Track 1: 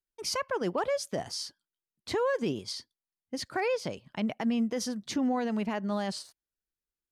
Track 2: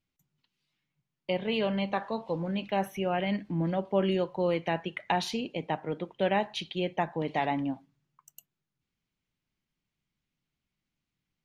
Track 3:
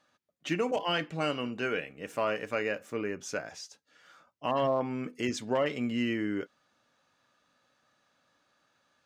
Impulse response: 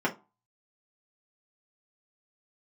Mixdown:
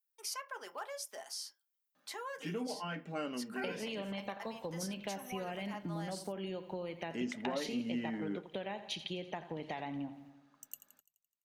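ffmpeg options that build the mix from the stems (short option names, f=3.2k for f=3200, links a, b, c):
-filter_complex "[0:a]highpass=810,aemphasis=mode=production:type=bsi,volume=-10.5dB,asplit=3[a][b][c];[b]volume=-10dB[d];[1:a]agate=range=-33dB:threshold=-53dB:ratio=3:detection=peak,acompressor=threshold=-35dB:ratio=6,highshelf=f=4.3k:g=7.5,adelay=2350,volume=2dB,asplit=2[e][f];[f]volume=-14.5dB[g];[2:a]equalizer=f=180:w=1.5:g=4.5,adelay=1950,volume=-8dB,asplit=3[h][i][j];[h]atrim=end=4.13,asetpts=PTS-STARTPTS,afade=t=out:st=4.126:d=0.004:c=hsin[k];[i]atrim=start=4.13:end=7.09,asetpts=PTS-STARTPTS,volume=0[l];[j]atrim=start=7.09,asetpts=PTS-STARTPTS,afade=t=in:d=0.004:c=hsin[m];[k][l][m]concat=n=3:v=0:a=1,asplit=2[n][o];[o]volume=-11.5dB[p];[c]apad=whole_len=485182[q];[n][q]sidechaincompress=threshold=-52dB:ratio=8:attack=16:release=407[r];[3:a]atrim=start_sample=2205[s];[d][p]amix=inputs=2:normalize=0[t];[t][s]afir=irnorm=-1:irlink=0[u];[g]aecho=0:1:85|170|255|340|425|510|595|680:1|0.56|0.314|0.176|0.0983|0.0551|0.0308|0.0173[v];[a][e][r][u][v]amix=inputs=5:normalize=0,acompressor=threshold=-46dB:ratio=1.5"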